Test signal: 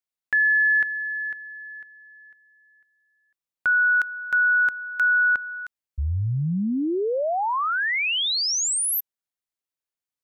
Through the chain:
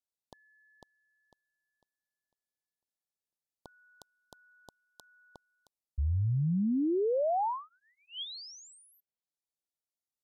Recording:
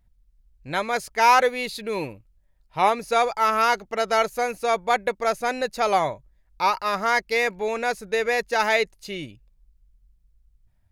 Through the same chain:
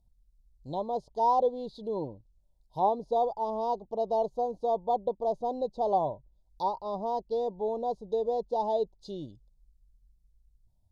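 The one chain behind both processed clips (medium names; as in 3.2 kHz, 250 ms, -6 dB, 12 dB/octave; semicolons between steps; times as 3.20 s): inverse Chebyshev band-stop 1.3–2.6 kHz, stop band 40 dB; low-pass that closes with the level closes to 1.8 kHz, closed at -27 dBFS; trim -4.5 dB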